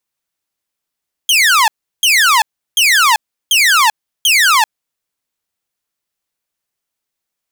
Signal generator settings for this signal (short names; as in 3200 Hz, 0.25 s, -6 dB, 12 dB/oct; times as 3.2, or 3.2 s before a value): burst of laser zaps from 3300 Hz, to 830 Hz, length 0.39 s saw, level -5 dB, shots 5, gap 0.35 s